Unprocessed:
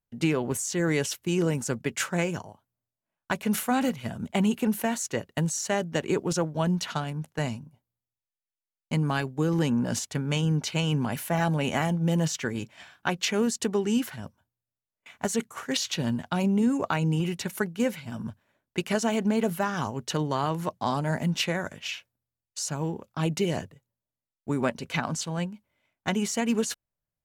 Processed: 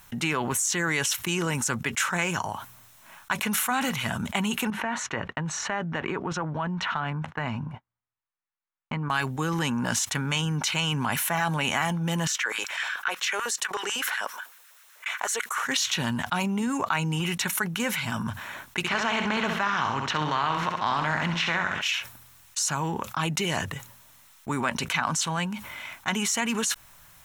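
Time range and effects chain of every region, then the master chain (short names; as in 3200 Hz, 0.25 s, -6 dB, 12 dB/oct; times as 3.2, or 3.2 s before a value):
4.7–9.1 LPF 1900 Hz + expander -54 dBFS + compressor 2.5:1, threshold -34 dBFS
12.27–15.64 low shelf 350 Hz -9.5 dB + compressor 2:1, threshold -39 dBFS + LFO high-pass square 8 Hz 480–1500 Hz
18.83–21.81 spectral contrast lowered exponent 0.68 + air absorption 210 m + flutter echo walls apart 11.2 m, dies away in 0.45 s
whole clip: resonant low shelf 740 Hz -9.5 dB, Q 1.5; notch 4700 Hz, Q 8.8; fast leveller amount 70%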